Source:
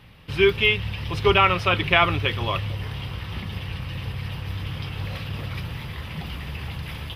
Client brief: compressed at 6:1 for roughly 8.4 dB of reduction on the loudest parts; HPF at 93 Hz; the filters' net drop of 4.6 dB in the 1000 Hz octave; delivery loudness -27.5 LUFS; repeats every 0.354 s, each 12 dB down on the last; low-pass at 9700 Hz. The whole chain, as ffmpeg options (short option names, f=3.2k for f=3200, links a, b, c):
-af "highpass=93,lowpass=9.7k,equalizer=f=1k:t=o:g=-6.5,acompressor=threshold=-23dB:ratio=6,aecho=1:1:354|708|1062:0.251|0.0628|0.0157,volume=3dB"